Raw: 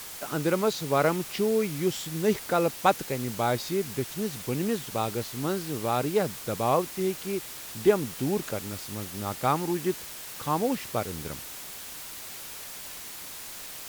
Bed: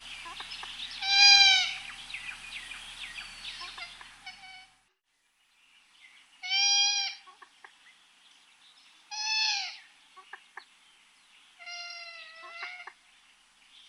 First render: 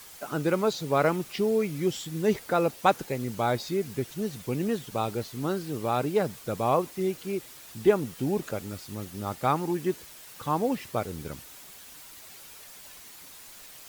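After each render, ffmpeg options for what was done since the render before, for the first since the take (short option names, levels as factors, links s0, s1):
-af "afftdn=nr=8:nf=-41"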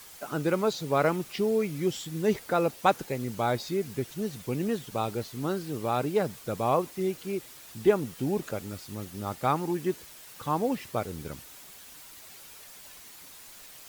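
-af "volume=0.891"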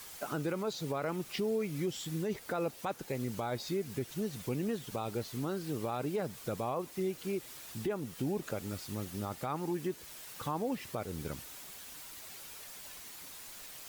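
-af "acompressor=threshold=0.02:ratio=2,alimiter=level_in=1.19:limit=0.0631:level=0:latency=1:release=20,volume=0.841"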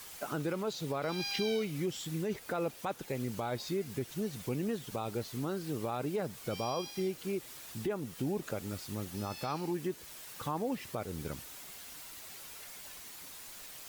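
-filter_complex "[1:a]volume=0.0891[s0];[0:a][s0]amix=inputs=2:normalize=0"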